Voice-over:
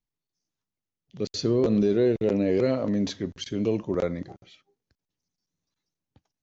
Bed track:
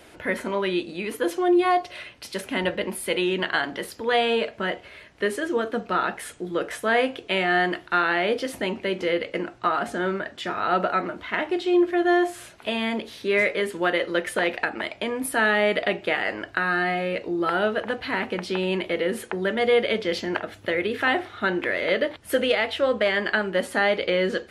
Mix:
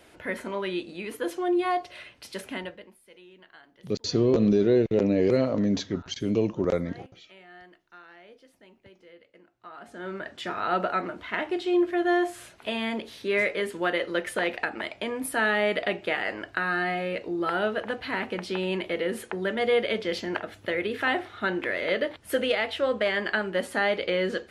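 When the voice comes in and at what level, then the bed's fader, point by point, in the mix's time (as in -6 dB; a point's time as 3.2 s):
2.70 s, +1.0 dB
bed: 2.51 s -5.5 dB
3 s -28 dB
9.5 s -28 dB
10.29 s -3.5 dB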